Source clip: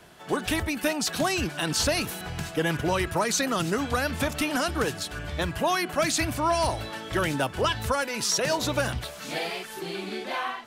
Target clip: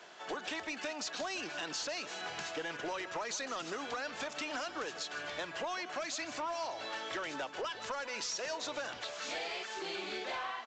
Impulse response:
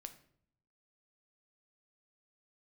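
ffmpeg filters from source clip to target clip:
-af "highpass=460,acompressor=threshold=-34dB:ratio=6,aresample=16000,asoftclip=type=tanh:threshold=-31.5dB,aresample=44100,aecho=1:1:156:0.178"

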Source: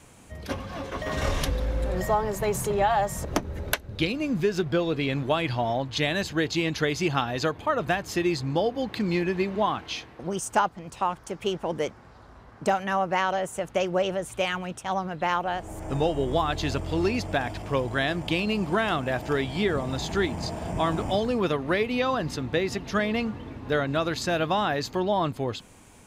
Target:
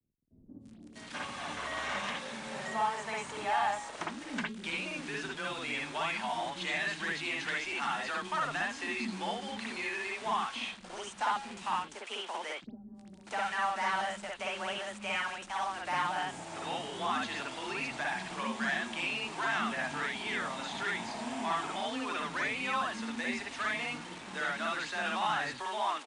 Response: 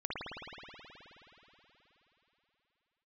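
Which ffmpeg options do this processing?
-filter_complex "[0:a]bandreject=f=270.4:t=h:w=4,bandreject=f=540.8:t=h:w=4,bandreject=f=811.2:t=h:w=4,bandreject=f=1.0816k:t=h:w=4,bandreject=f=1.352k:t=h:w=4,bandreject=f=1.6224k:t=h:w=4,bandreject=f=1.8928k:t=h:w=4,bandreject=f=2.1632k:t=h:w=4,bandreject=f=2.4336k:t=h:w=4,bandreject=f=2.704k:t=h:w=4,bandreject=f=2.9744k:t=h:w=4,bandreject=f=3.2448k:t=h:w=4,bandreject=f=3.5152k:t=h:w=4,bandreject=f=3.7856k:t=h:w=4,bandreject=f=4.056k:t=h:w=4,bandreject=f=4.3264k:t=h:w=4,bandreject=f=4.5968k:t=h:w=4,bandreject=f=4.8672k:t=h:w=4,bandreject=f=5.1376k:t=h:w=4,bandreject=f=5.408k:t=h:w=4,bandreject=f=5.6784k:t=h:w=4,bandreject=f=5.9488k:t=h:w=4,bandreject=f=6.2192k:t=h:w=4,bandreject=f=6.4896k:t=h:w=4,bandreject=f=6.76k:t=h:w=4,bandreject=f=7.0304k:t=h:w=4,bandreject=f=7.3008k:t=h:w=4,bandreject=f=7.5712k:t=h:w=4,bandreject=f=7.8416k:t=h:w=4,bandreject=f=8.112k:t=h:w=4,bandreject=f=8.3824k:t=h:w=4,bandreject=f=8.6528k:t=h:w=4,bandreject=f=8.9232k:t=h:w=4,bandreject=f=9.1936k:t=h:w=4,bandreject=f=9.464k:t=h:w=4,bandreject=f=9.7344k:t=h:w=4,bandreject=f=10.0048k:t=h:w=4,acrossover=split=2700[a][b];[b]acompressor=threshold=-48dB:ratio=4:attack=1:release=60[c];[a][c]amix=inputs=2:normalize=0,tiltshelf=f=970:g=-7.5,acrossover=split=270|730|4800[d][e][f][g];[e]acompressor=threshold=-41dB:ratio=6[h];[d][h][f][g]amix=inputs=4:normalize=0,asoftclip=type=tanh:threshold=-24dB,highpass=210,equalizer=f=220:t=q:w=4:g=8,equalizer=f=470:t=q:w=4:g=-4,equalizer=f=860:t=q:w=4:g=4,equalizer=f=4.9k:t=q:w=4:g=-3,lowpass=f=8.3k:w=0.5412,lowpass=f=8.3k:w=1.3066,acrusher=bits=6:mix=0:aa=0.000001[i];[1:a]atrim=start_sample=2205,atrim=end_sample=4410[j];[i][j]afir=irnorm=-1:irlink=0,afreqshift=16,acrossover=split=310[k][l];[l]adelay=650[m];[k][m]amix=inputs=2:normalize=0,volume=-2dB" -ar 22050 -c:a wmav2 -b:a 64k

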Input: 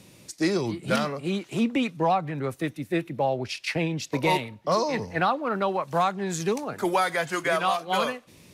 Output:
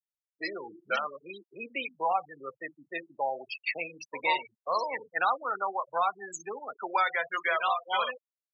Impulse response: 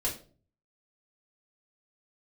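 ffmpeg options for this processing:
-filter_complex "[0:a]asplit=2[a][b];[1:a]atrim=start_sample=2205,afade=t=out:st=0.3:d=0.01,atrim=end_sample=13671,asetrate=48510,aresample=44100[c];[b][c]afir=irnorm=-1:irlink=0,volume=-13.5dB[d];[a][d]amix=inputs=2:normalize=0,afftfilt=real='re*gte(hypot(re,im),0.0794)':imag='im*gte(hypot(re,im),0.0794)':win_size=1024:overlap=0.75,highpass=900,volume=-1dB"

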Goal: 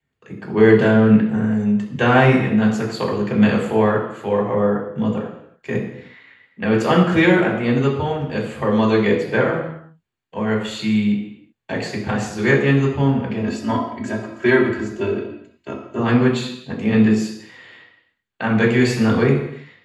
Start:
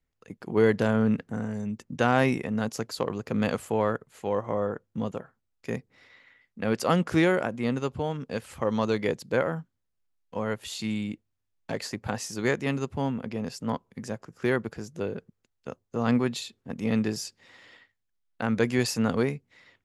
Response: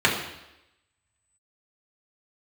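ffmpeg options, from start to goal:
-filter_complex "[0:a]asettb=1/sr,asplit=3[a][b][c];[a]atrim=end=13.394[d];[b]atrim=start=13.39:end=15.99,asetpts=PTS-STARTPTS,afade=t=in:d=0.004:c=qsin,afade=t=out:st=2.596:d=0.004:c=qsin,aecho=1:1:3.1:0.86,atrim=end_sample=114660[e];[c]atrim=start=15.986[f];[d][e]acrossfade=d=0.004:c1=hsin:c2=qsin[g];[g][f]acrossfade=d=0.004:c1=qsin:c2=hsin[h];[1:a]atrim=start_sample=2205,afade=t=out:st=0.43:d=0.01,atrim=end_sample=19404[i];[h][i]afir=irnorm=-1:irlink=0,volume=-9dB"

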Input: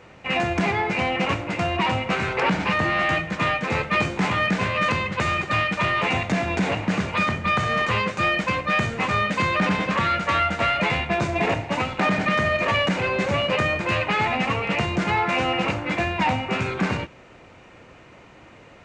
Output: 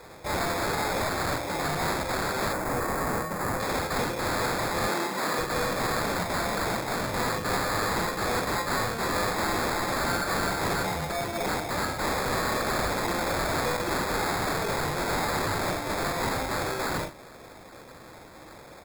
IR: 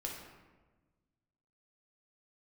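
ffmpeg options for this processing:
-filter_complex "[0:a]asettb=1/sr,asplit=3[a][b][c];[a]atrim=end=10.814[d];[b]atrim=start=10.81:end=11.45,asetpts=PTS-STARTPTS,afade=t=in:d=0.004:c=qsin,afade=t=out:st=0.636:d=0.004:c=qsin,acompressor=threshold=-25dB:ratio=6[e];[c]atrim=start=11.446[f];[d][e]acrossfade=d=0.004:c1=hsin:c2=qsin[g];[g][f]acrossfade=d=0.004:c1=qsin:c2=hsin,aeval=exprs='(mod(10*val(0)+1,2)-1)/10':c=same,bass=f=250:g=-6,treble=f=4k:g=12,asoftclip=type=tanh:threshold=-26.5dB,asplit=2[h][i];[i]adelay=42,volume=-4dB[j];[h][j]amix=inputs=2:normalize=0,acrusher=samples=15:mix=1:aa=0.000001,asettb=1/sr,asplit=3[k][l][m];[k]atrim=end=2.534[n];[l]atrim=start=2.53:end=3.6,asetpts=PTS-STARTPTS,afade=t=in:d=0.004:c=qsin,afade=t=out:st=1.066:d=0.004:c=qsin,equalizer=f=3.7k:w=1.1:g=-11.5[o];[m]atrim=start=3.596[p];[n][o]acrossfade=d=0.004:c1=hsin:c2=qsin[q];[q][p]acrossfade=d=0.004:c1=qsin:c2=hsin,asettb=1/sr,asplit=3[r][s][t];[r]atrim=end=4.884[u];[s]atrim=start=4.88:end=5.39,asetpts=PTS-STARTPTS,afade=t=in:d=0.004:c=qsin,afade=t=out:st=0.506:d=0.004:c=qsin,highpass=f=170:w=0.5412,highpass=f=170:w=1.3066[v];[t]atrim=start=5.386[w];[u][v]acrossfade=d=0.004:c1=hsin:c2=qsin[x];[x][w]acrossfade=d=0.004:c1=qsin:c2=hsin"

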